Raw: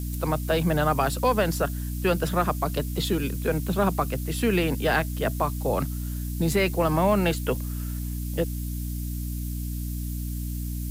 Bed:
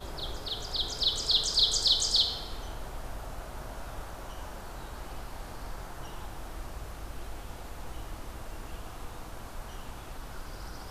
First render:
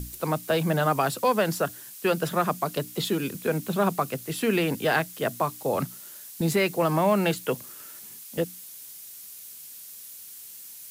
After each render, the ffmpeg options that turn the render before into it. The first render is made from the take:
-af "bandreject=f=60:t=h:w=6,bandreject=f=120:t=h:w=6,bandreject=f=180:t=h:w=6,bandreject=f=240:t=h:w=6,bandreject=f=300:t=h:w=6"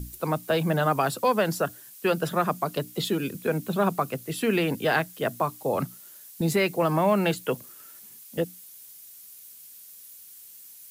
-af "afftdn=nr=6:nf=-44"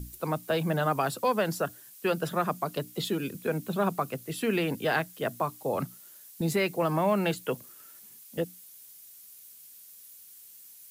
-af "volume=-3.5dB"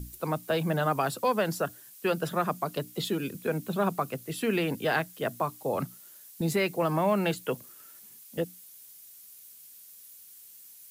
-af anull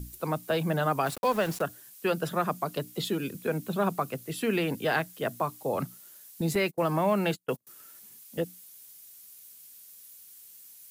-filter_complex "[0:a]asplit=3[a][b][c];[a]afade=t=out:st=1.05:d=0.02[d];[b]aeval=exprs='val(0)*gte(abs(val(0)),0.015)':c=same,afade=t=in:st=1.05:d=0.02,afade=t=out:st=1.61:d=0.02[e];[c]afade=t=in:st=1.61:d=0.02[f];[d][e][f]amix=inputs=3:normalize=0,asettb=1/sr,asplit=3[g][h][i];[g]atrim=end=6.554[j];[h]atrim=start=6.55:end=7.67,asetpts=PTS-STARTPTS,afade=t=in:d=0.004:c=qsin,afade=t=out:st=1.116:d=0.004:c=qsin,agate=range=-34dB:threshold=-35dB:ratio=16:release=100:detection=peak[k];[i]atrim=start=7.666[l];[j][k]acrossfade=d=0.004:c1=hsin:c2=qsin[m];[m][l]acrossfade=d=0.004:c1=qsin:c2=hsin"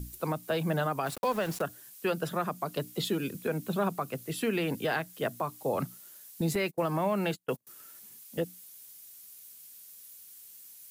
-af "alimiter=limit=-20dB:level=0:latency=1:release=217"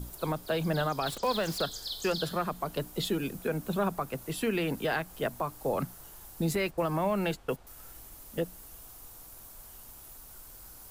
-filter_complex "[1:a]volume=-13.5dB[a];[0:a][a]amix=inputs=2:normalize=0"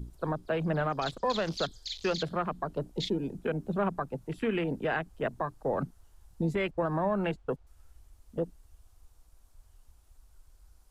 -af "lowpass=8.7k,afwtdn=0.0112"

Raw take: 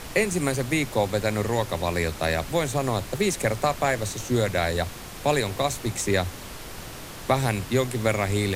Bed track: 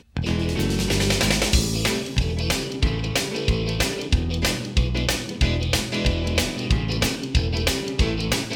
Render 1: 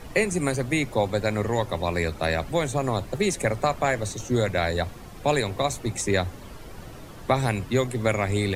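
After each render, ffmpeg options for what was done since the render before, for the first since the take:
-af "afftdn=nr=11:nf=-39"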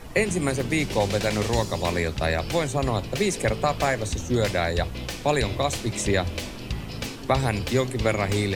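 -filter_complex "[1:a]volume=-10.5dB[a];[0:a][a]amix=inputs=2:normalize=0"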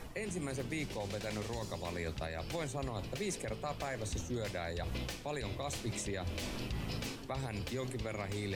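-af "areverse,acompressor=threshold=-29dB:ratio=10,areverse,alimiter=level_in=4.5dB:limit=-24dB:level=0:latency=1:release=205,volume=-4.5dB"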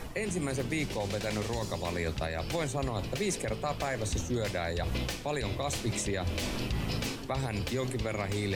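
-af "volume=6.5dB"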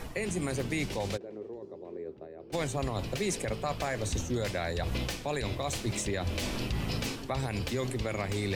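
-filter_complex "[0:a]asplit=3[a][b][c];[a]afade=t=out:st=1.16:d=0.02[d];[b]bandpass=f=380:t=q:w=4.1,afade=t=in:st=1.16:d=0.02,afade=t=out:st=2.52:d=0.02[e];[c]afade=t=in:st=2.52:d=0.02[f];[d][e][f]amix=inputs=3:normalize=0,asettb=1/sr,asplit=3[g][h][i];[g]atrim=end=5.554[j];[h]atrim=start=5.55:end=6.06,asetpts=PTS-STARTPTS,afade=t=in:d=0.004:c=qsin,afade=t=out:st=0.506:d=0.004:c=qsin,aeval=exprs='sgn(val(0))*max(abs(val(0))-0.00188,0)':c=same[k];[i]atrim=start=6.056[l];[j][k]acrossfade=d=0.004:c1=hsin:c2=qsin[m];[m][l]acrossfade=d=0.004:c1=qsin:c2=hsin"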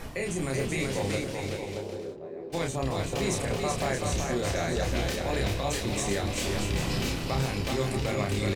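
-filter_complex "[0:a]asplit=2[a][b];[b]adelay=30,volume=-3dB[c];[a][c]amix=inputs=2:normalize=0,aecho=1:1:380|627|787.6|891.9|959.7:0.631|0.398|0.251|0.158|0.1"

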